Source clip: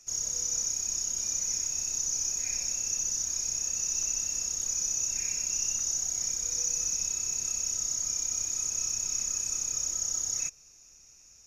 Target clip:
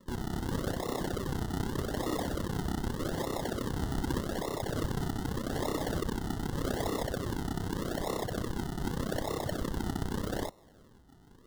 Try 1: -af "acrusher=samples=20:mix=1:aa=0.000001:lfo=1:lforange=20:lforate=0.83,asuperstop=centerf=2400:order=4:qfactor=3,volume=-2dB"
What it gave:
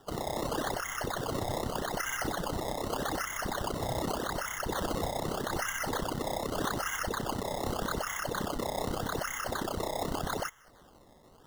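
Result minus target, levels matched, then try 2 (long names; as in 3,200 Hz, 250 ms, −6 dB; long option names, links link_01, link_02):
sample-and-hold swept by an LFO: distortion −6 dB
-af "acrusher=samples=55:mix=1:aa=0.000001:lfo=1:lforange=55:lforate=0.83,asuperstop=centerf=2400:order=4:qfactor=3,volume=-2dB"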